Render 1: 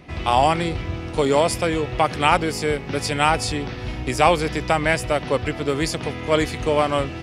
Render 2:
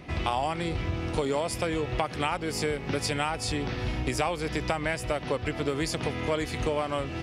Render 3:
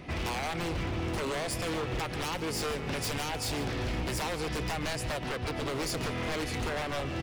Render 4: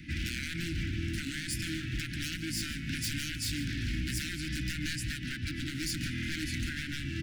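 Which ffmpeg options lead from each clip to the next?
-af "acompressor=threshold=-25dB:ratio=6"
-filter_complex "[0:a]aeval=exprs='0.0422*(abs(mod(val(0)/0.0422+3,4)-2)-1)':c=same,asplit=2[a][b];[b]adelay=145.8,volume=-12dB,highshelf=f=4k:g=-3.28[c];[a][c]amix=inputs=2:normalize=0"
-af "asuperstop=centerf=700:order=20:qfactor=0.61"

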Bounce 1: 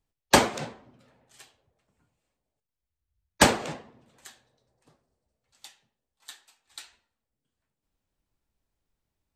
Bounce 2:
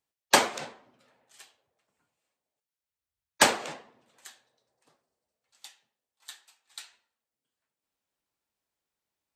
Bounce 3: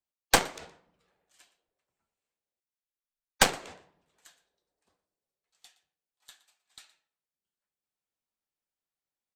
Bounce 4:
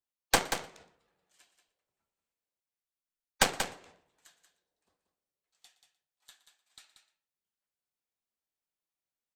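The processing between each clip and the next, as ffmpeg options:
-af "highpass=f=620:p=1"
-af "aecho=1:1:118:0.126,afreqshift=-71,aeval=exprs='0.891*(cos(1*acos(clip(val(0)/0.891,-1,1)))-cos(1*PI/2))+0.0708*(cos(6*acos(clip(val(0)/0.891,-1,1)))-cos(6*PI/2))+0.0794*(cos(7*acos(clip(val(0)/0.891,-1,1)))-cos(7*PI/2))':c=same"
-af "aecho=1:1:184:0.398,volume=-3.5dB"

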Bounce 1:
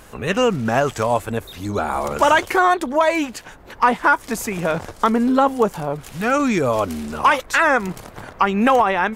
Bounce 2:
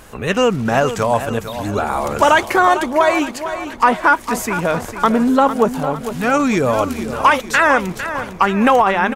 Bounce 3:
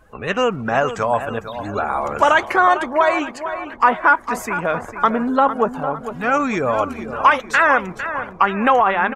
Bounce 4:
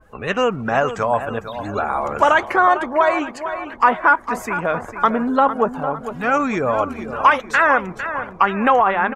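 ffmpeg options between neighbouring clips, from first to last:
-af "aecho=1:1:453|906|1359|1812|2265:0.282|0.135|0.0649|0.0312|0.015,volume=2.5dB"
-af "afftdn=nr=16:nf=-37,equalizer=f=1.2k:t=o:w=2.6:g=7.5,bandreject=f=920:w=25,volume=-7.5dB"
-af "adynamicequalizer=threshold=0.0316:dfrequency=2300:dqfactor=0.7:tfrequency=2300:tqfactor=0.7:attack=5:release=100:ratio=0.375:range=3.5:mode=cutabove:tftype=highshelf"

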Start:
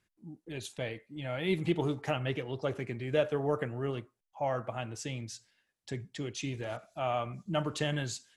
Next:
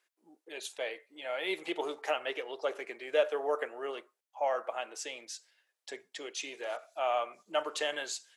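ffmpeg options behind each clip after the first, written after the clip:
-af "highpass=f=440:w=0.5412,highpass=f=440:w=1.3066,volume=2dB"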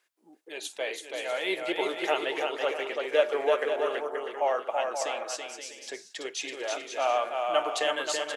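-af "aecho=1:1:330|528|646.8|718.1|760.8:0.631|0.398|0.251|0.158|0.1,volume=4dB"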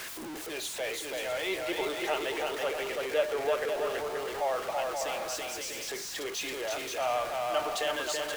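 -af "aeval=exprs='val(0)+0.5*0.0398*sgn(val(0))':c=same,volume=-6dB"

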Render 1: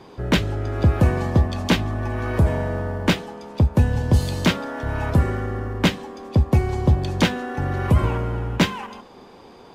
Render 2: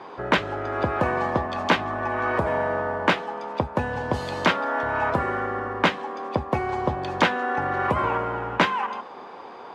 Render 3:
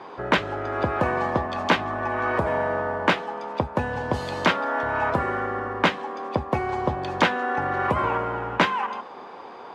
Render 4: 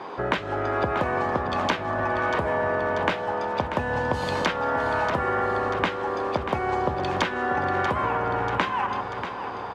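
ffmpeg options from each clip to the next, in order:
-filter_complex "[0:a]asplit=2[a][b];[b]acompressor=threshold=-26dB:ratio=6,volume=-1.5dB[c];[a][c]amix=inputs=2:normalize=0,bandpass=f=1.1k:t=q:w=1:csg=0,volume=4.5dB"
-af anull
-af "acompressor=threshold=-25dB:ratio=10,aecho=1:1:638|1276|1914|2552|3190|3828|4466:0.335|0.198|0.117|0.0688|0.0406|0.0239|0.0141,volume=4dB"

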